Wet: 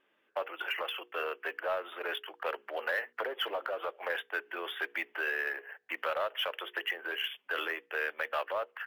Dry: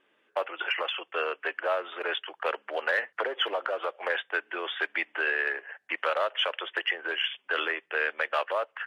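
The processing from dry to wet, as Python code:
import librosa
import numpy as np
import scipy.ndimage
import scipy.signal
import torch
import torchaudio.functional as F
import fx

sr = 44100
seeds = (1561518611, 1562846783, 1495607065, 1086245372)

p1 = fx.hum_notches(x, sr, base_hz=60, count=8)
p2 = 10.0 ** (-27.0 / 20.0) * np.tanh(p1 / 10.0 ** (-27.0 / 20.0))
p3 = p1 + (p2 * librosa.db_to_amplitude(-7.5))
p4 = np.interp(np.arange(len(p3)), np.arange(len(p3))[::3], p3[::3])
y = p4 * librosa.db_to_amplitude(-7.0)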